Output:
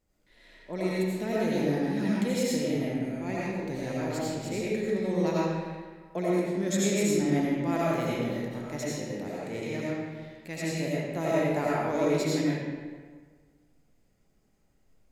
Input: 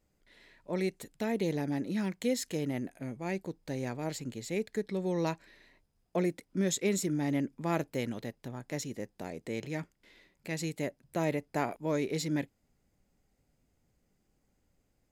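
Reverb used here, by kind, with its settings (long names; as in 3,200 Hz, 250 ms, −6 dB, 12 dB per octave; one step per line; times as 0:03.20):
comb and all-pass reverb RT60 1.6 s, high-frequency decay 0.7×, pre-delay 50 ms, DRR −7 dB
level −2.5 dB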